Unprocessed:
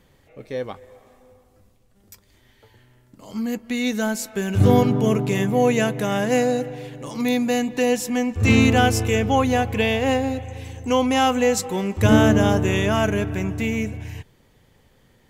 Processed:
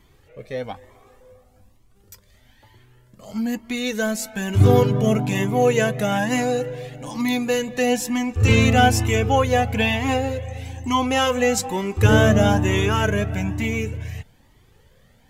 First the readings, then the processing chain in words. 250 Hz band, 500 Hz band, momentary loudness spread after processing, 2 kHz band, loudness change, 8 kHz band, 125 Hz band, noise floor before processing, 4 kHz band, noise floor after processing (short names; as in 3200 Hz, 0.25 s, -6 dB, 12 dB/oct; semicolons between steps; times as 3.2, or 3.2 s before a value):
-2.0 dB, 0.0 dB, 16 LU, +1.5 dB, +0.5 dB, +1.0 dB, +2.5 dB, -58 dBFS, +1.5 dB, -56 dBFS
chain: cascading flanger rising 1.1 Hz; gain +5.5 dB